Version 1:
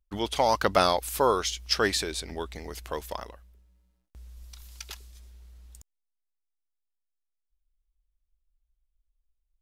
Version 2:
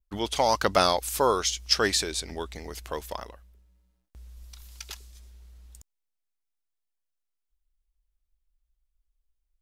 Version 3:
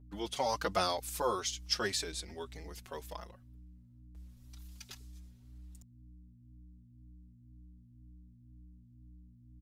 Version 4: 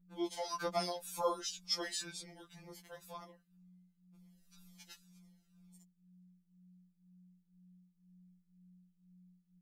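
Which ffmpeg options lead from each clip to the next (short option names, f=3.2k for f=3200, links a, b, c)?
-af "adynamicequalizer=threshold=0.00631:dfrequency=6600:dqfactor=1:tfrequency=6600:tqfactor=1:attack=5:release=100:ratio=0.375:range=2.5:mode=boostabove:tftype=bell"
-filter_complex "[0:a]aeval=exprs='val(0)+0.00562*(sin(2*PI*60*n/s)+sin(2*PI*2*60*n/s)/2+sin(2*PI*3*60*n/s)/3+sin(2*PI*4*60*n/s)/4+sin(2*PI*5*60*n/s)/5)':c=same,asplit=2[a][b];[b]adelay=4.7,afreqshift=2[c];[a][c]amix=inputs=2:normalize=1,volume=-6.5dB"
-af "afftfilt=real='re*2.83*eq(mod(b,8),0)':imag='im*2.83*eq(mod(b,8),0)':win_size=2048:overlap=0.75,volume=-2dB"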